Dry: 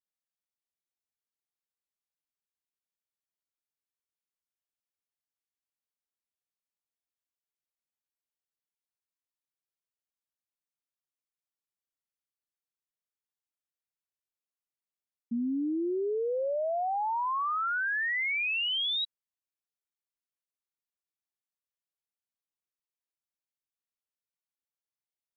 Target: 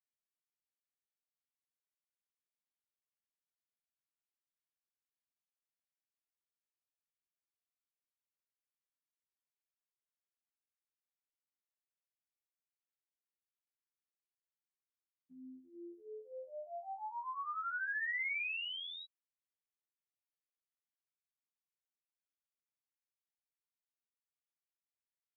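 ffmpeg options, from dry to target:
-af "aderivative,afftfilt=real='hypot(re,im)*cos(PI*b)':imag='0':win_size=2048:overlap=0.75,lowpass=f=2.3k:w=0.5412,lowpass=f=2.3k:w=1.3066,volume=8.5dB"

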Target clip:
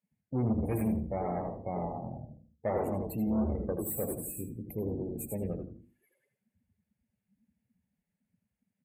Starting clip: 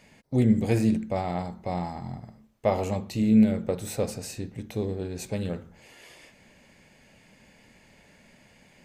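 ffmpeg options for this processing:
-filter_complex "[0:a]asplit=2[a][b];[b]asplit=4[c][d][e][f];[c]adelay=95,afreqshift=-140,volume=-4dB[g];[d]adelay=190,afreqshift=-280,volume=-13.9dB[h];[e]adelay=285,afreqshift=-420,volume=-23.8dB[i];[f]adelay=380,afreqshift=-560,volume=-33.7dB[j];[g][h][i][j]amix=inputs=4:normalize=0[k];[a][k]amix=inputs=2:normalize=0,aexciter=amount=9.3:drive=5.2:freq=7.8k,asoftclip=type=tanh:threshold=-21.5dB,equalizer=f=7.5k:t=o:w=1.9:g=-9.5,afftdn=nr=34:nf=-40,highpass=90,asplit=2[l][m];[m]adelay=81,lowpass=f=3.2k:p=1,volume=-8.5dB,asplit=2[n][o];[o]adelay=81,lowpass=f=3.2k:p=1,volume=0.23,asplit=2[p][q];[q]adelay=81,lowpass=f=3.2k:p=1,volume=0.23[r];[n][p][r]amix=inputs=3:normalize=0[s];[l][s]amix=inputs=2:normalize=0,volume=-3.5dB"

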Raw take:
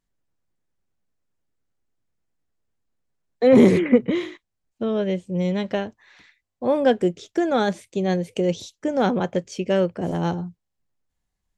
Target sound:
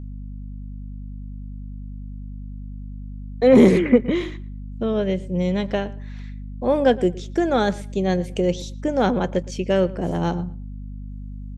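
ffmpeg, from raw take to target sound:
-filter_complex "[0:a]aeval=exprs='val(0)+0.0224*(sin(2*PI*50*n/s)+sin(2*PI*2*50*n/s)/2+sin(2*PI*3*50*n/s)/3+sin(2*PI*4*50*n/s)/4+sin(2*PI*5*50*n/s)/5)':c=same,asplit=2[a][b];[b]adelay=115,lowpass=f=2.9k:p=1,volume=-19.5dB,asplit=2[c][d];[d]adelay=115,lowpass=f=2.9k:p=1,volume=0.21[e];[a][c][e]amix=inputs=3:normalize=0,volume=1dB"

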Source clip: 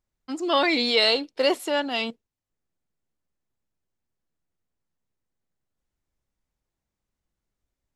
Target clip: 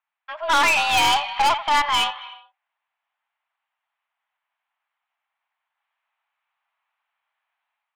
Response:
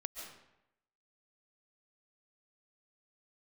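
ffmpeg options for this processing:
-filter_complex "[0:a]highpass=f=510:t=q:w=0.5412,highpass=f=510:t=q:w=1.307,lowpass=f=2.9k:t=q:w=0.5176,lowpass=f=2.9k:t=q:w=0.7071,lowpass=f=2.9k:t=q:w=1.932,afreqshift=300,dynaudnorm=f=250:g=3:m=7dB,asplit=2[a][b];[1:a]atrim=start_sample=2205,afade=t=out:st=0.38:d=0.01,atrim=end_sample=17199,adelay=86[c];[b][c]afir=irnorm=-1:irlink=0,volume=-14dB[d];[a][d]amix=inputs=2:normalize=0,aeval=exprs='(tanh(12.6*val(0)+0.25)-tanh(0.25))/12.6':c=same,volume=7dB"

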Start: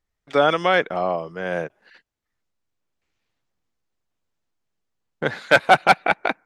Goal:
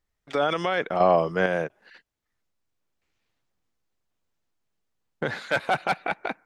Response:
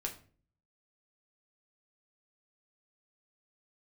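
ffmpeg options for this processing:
-filter_complex "[0:a]alimiter=limit=-14dB:level=0:latency=1:release=33,asettb=1/sr,asplit=3[a][b][c];[a]atrim=end=1.004[d];[b]atrim=start=1:end=1.46,asetpts=PTS-STARTPTS,afade=t=in:d=0.004:c=qsin,afade=t=out:st=0.456:d=0.004:c=qsin,acontrast=81[e];[c]atrim=start=1.456[f];[d][e]acrossfade=d=0.004:c1=hsin:c2=qsin[g];[g][f]acrossfade=d=0.004:c1=qsin:c2=hsin"

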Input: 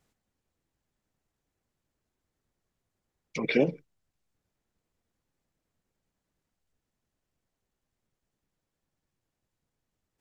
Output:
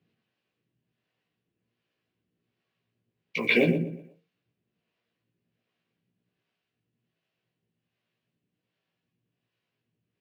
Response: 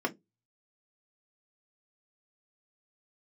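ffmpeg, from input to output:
-filter_complex "[0:a]highpass=f=100:w=0.5412,highpass=f=100:w=1.3066,equalizer=f=230:t=q:w=4:g=-3,equalizer=f=380:t=q:w=4:g=-3,equalizer=f=570:t=q:w=4:g=-6,equalizer=f=860:t=q:w=4:g=-10,equalizer=f=1.3k:t=q:w=4:g=-5,equalizer=f=2.7k:t=q:w=4:g=8,lowpass=f=4.3k:w=0.5412,lowpass=f=4.3k:w=1.3066,asplit=2[a][b];[b]adelay=121,lowpass=f=2.8k:p=1,volume=-6.5dB,asplit=2[c][d];[d]adelay=121,lowpass=f=2.8k:p=1,volume=0.34,asplit=2[e][f];[f]adelay=121,lowpass=f=2.8k:p=1,volume=0.34,asplit=2[g][h];[h]adelay=121,lowpass=f=2.8k:p=1,volume=0.34[i];[c][e][g][i]amix=inputs=4:normalize=0[j];[a][j]amix=inputs=2:normalize=0,acrusher=bits=9:mode=log:mix=0:aa=0.000001,asplit=2[k][l];[l]adelay=17,volume=-3dB[m];[k][m]amix=inputs=2:normalize=0,asplit=2[n][o];[1:a]atrim=start_sample=2205,asetrate=23814,aresample=44100[p];[o][p]afir=irnorm=-1:irlink=0,volume=-19.5dB[q];[n][q]amix=inputs=2:normalize=0,acrossover=split=440[r][s];[r]aeval=exprs='val(0)*(1-0.7/2+0.7/2*cos(2*PI*1.3*n/s))':c=same[t];[s]aeval=exprs='val(0)*(1-0.7/2-0.7/2*cos(2*PI*1.3*n/s))':c=same[u];[t][u]amix=inputs=2:normalize=0,volume=4dB"

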